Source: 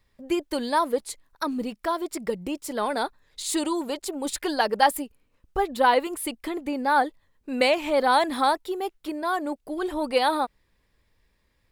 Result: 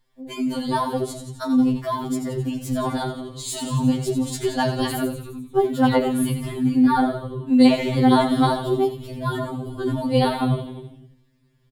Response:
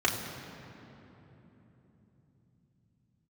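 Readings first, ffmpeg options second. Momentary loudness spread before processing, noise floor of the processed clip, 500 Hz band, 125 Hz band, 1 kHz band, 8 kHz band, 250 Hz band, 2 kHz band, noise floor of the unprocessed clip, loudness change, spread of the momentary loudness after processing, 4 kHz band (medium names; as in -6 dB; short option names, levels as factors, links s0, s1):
11 LU, -60 dBFS, +2.0 dB, no reading, -1.5 dB, 0.0 dB, +10.5 dB, -4.0 dB, -69 dBFS, +4.0 dB, 12 LU, +0.5 dB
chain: -filter_complex "[0:a]asplit=9[s0][s1][s2][s3][s4][s5][s6][s7][s8];[s1]adelay=87,afreqshift=-93,volume=0.398[s9];[s2]adelay=174,afreqshift=-186,volume=0.245[s10];[s3]adelay=261,afreqshift=-279,volume=0.153[s11];[s4]adelay=348,afreqshift=-372,volume=0.0944[s12];[s5]adelay=435,afreqshift=-465,volume=0.0589[s13];[s6]adelay=522,afreqshift=-558,volume=0.0363[s14];[s7]adelay=609,afreqshift=-651,volume=0.0226[s15];[s8]adelay=696,afreqshift=-744,volume=0.014[s16];[s0][s9][s10][s11][s12][s13][s14][s15][s16]amix=inputs=9:normalize=0,asplit=2[s17][s18];[s18]asubboost=boost=11.5:cutoff=240[s19];[1:a]atrim=start_sample=2205,atrim=end_sample=3969[s20];[s19][s20]afir=irnorm=-1:irlink=0,volume=0.178[s21];[s17][s21]amix=inputs=2:normalize=0,afftfilt=real='re*2.45*eq(mod(b,6),0)':imag='im*2.45*eq(mod(b,6),0)':win_size=2048:overlap=0.75"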